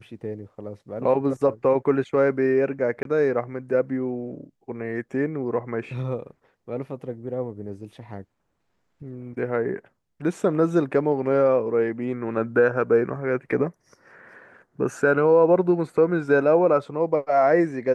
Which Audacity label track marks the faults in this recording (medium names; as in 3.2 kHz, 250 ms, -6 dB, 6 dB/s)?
3.030000	3.050000	dropout 22 ms